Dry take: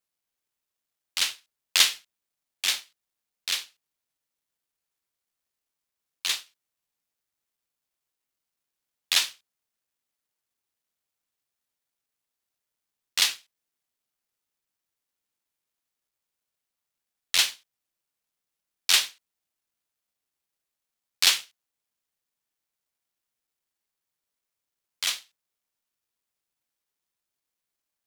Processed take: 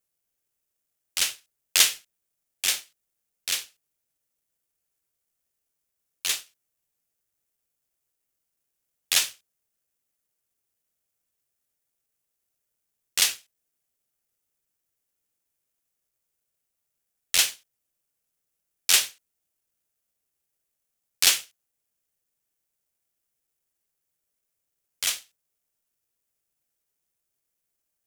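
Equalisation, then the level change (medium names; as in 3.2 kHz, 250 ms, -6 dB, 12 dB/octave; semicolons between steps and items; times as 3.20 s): graphic EQ 250/1000/2000/4000 Hz -4/-8/-4/-8 dB; +6.5 dB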